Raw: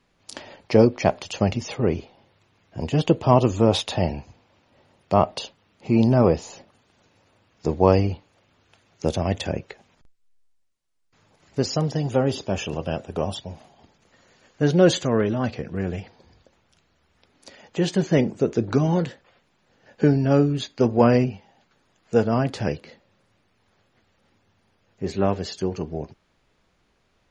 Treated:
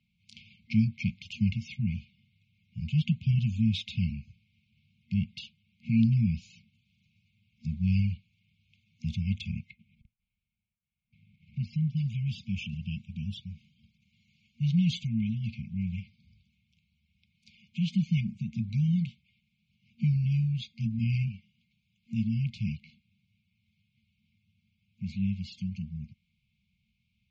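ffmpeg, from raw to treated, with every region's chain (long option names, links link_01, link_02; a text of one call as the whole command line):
ffmpeg -i in.wav -filter_complex "[0:a]asettb=1/sr,asplit=3[link_01][link_02][link_03];[link_01]atrim=end=9.704[link_04];[link_02]atrim=start=9.7:end=11.97,asetpts=PTS-STARTPTS,afade=type=in:duration=0.004:curve=qsin,afade=type=out:start_time=2.266:duration=0.004:curve=qsin,lowpass=2200,acompressor=mode=upward:threshold=-25dB:ratio=2.5:attack=3.2:release=140:knee=2.83:detection=peak,agate=range=-33dB:threshold=-35dB:ratio=3:release=100:detection=peak[link_05];[link_03]atrim=start=11.966[link_06];[link_04][link_05]acrossfade=duration=0.004:curve1=hsin:curve2=qsin[link_07];[link_07][link_06]acrossfade=duration=0.004:curve1=qsin:curve2=hsin,lowpass=2700,afftfilt=real='re*(1-between(b*sr/4096,230,2100))':imag='im*(1-between(b*sr/4096,230,2100))':win_size=4096:overlap=0.75,highpass=62,volume=-3dB" out.wav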